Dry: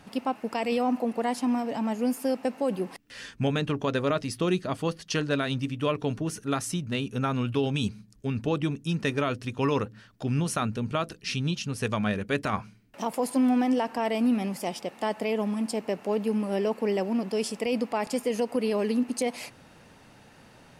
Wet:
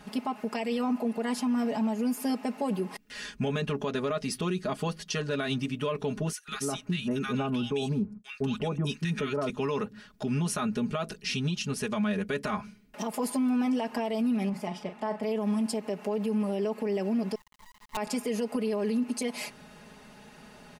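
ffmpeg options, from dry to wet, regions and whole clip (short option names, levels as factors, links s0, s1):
-filter_complex "[0:a]asettb=1/sr,asplit=3[s0][s1][s2];[s0]atrim=end=6.324[s3];[s1]atrim=start=6.32:end=9.5,asetpts=PTS-STARTPTS,afade=t=in:d=0.004:c=qsin,afade=t=out:st=3.176:d=0.004:c=qsin,agate=range=0.0224:threshold=0.00562:ratio=3:release=100:detection=peak,acrossover=split=1300[s4][s5];[s4]adelay=160[s6];[s6][s5]amix=inputs=2:normalize=0,atrim=end_sample=140238[s7];[s2]atrim=start=9.496[s8];[s3][s7]acrossfade=d=0.004:c1=hsin:c2=qsin[s9];[s9][s8]acrossfade=d=0.004:c1=qsin:c2=hsin,asettb=1/sr,asplit=3[s10][s11][s12];[s10]atrim=end=14.494[s13];[s11]atrim=start=14.49:end=15.23,asetpts=PTS-STARTPTS,afade=t=in:d=0.004:c=qsin,afade=t=out:st=0.736:d=0.004:c=qsin,lowpass=f=1500:p=1,equalizer=f=400:w=0.88:g=-5.5,asplit=2[s14][s15];[s15]adelay=39,volume=0.355[s16];[s14][s16]amix=inputs=2:normalize=0,atrim=end_sample=32634[s17];[s12]atrim=start=15.226[s18];[s13][s17]acrossfade=d=0.004:c1=hsin:c2=qsin[s19];[s19][s18]acrossfade=d=0.004:c1=qsin:c2=hsin,asettb=1/sr,asplit=3[s20][s21][s22];[s20]atrim=end=17.354[s23];[s21]atrim=start=17.35:end=17.97,asetpts=PTS-STARTPTS,afade=t=in:d=0.004:c=qsin,afade=t=out:st=0.616:d=0.004:c=qsin,asuperpass=centerf=1000:order=8:qfactor=4.2,acrusher=bits=6:dc=4:mix=0:aa=0.000001[s24];[s22]atrim=start=17.966[s25];[s23][s24]acrossfade=d=0.004:c1=hsin:c2=qsin[s26];[s26][s25]acrossfade=d=0.004:c1=qsin:c2=hsin,aecho=1:1:4.8:0.9,alimiter=limit=0.0841:level=0:latency=1:release=107"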